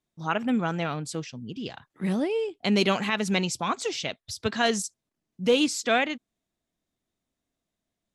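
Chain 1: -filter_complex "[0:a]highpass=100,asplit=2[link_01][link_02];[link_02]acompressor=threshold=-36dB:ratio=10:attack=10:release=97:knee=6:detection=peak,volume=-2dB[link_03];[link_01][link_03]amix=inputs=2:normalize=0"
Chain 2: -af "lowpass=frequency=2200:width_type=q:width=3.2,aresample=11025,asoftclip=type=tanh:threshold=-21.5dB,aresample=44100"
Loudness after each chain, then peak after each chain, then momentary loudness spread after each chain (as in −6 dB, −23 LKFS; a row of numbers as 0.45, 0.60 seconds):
−25.5, −29.0 LKFS; −8.0, −17.5 dBFS; 11, 10 LU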